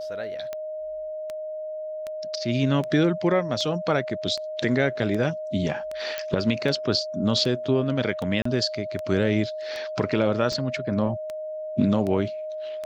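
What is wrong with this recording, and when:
tick 78 rpm -19 dBFS
whine 620 Hz -30 dBFS
6.18 s: pop -13 dBFS
8.42–8.45 s: dropout 34 ms

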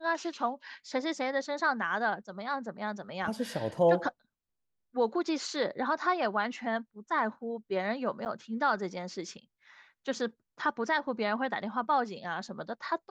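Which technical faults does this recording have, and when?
8.25–8.26 s: dropout 9.7 ms

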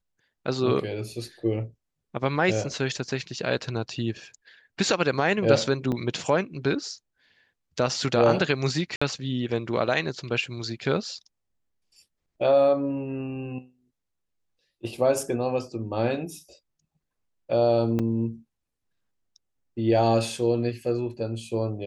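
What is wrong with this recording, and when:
5.92 s: dropout 2.8 ms
8.96–9.02 s: dropout 55 ms
17.99–18.00 s: dropout 5.2 ms

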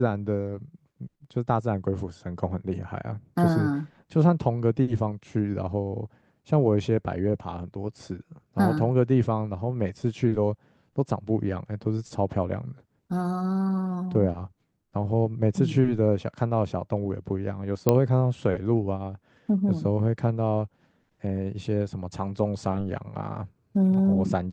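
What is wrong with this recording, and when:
17.89 s: pop -7 dBFS

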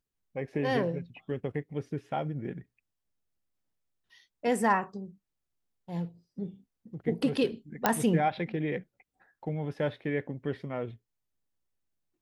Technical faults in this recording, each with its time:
7.86 s: pop -8 dBFS

